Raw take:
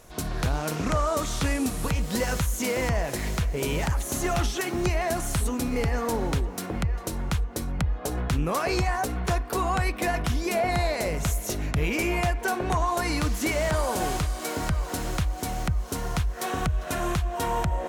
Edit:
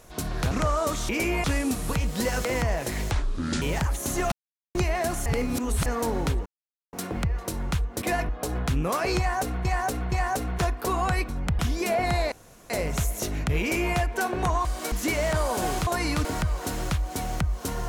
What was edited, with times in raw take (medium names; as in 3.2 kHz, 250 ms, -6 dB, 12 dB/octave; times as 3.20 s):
0.51–0.81 s: delete
2.40–2.72 s: delete
3.38–3.68 s: speed 59%
4.38–4.81 s: mute
5.32–5.92 s: reverse
6.52 s: insert silence 0.47 s
7.61–7.91 s: swap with 9.97–10.24 s
8.80–9.27 s: loop, 3 plays
10.97 s: insert room tone 0.38 s
11.88–12.23 s: copy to 1.39 s
12.92–13.30 s: swap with 14.25–14.52 s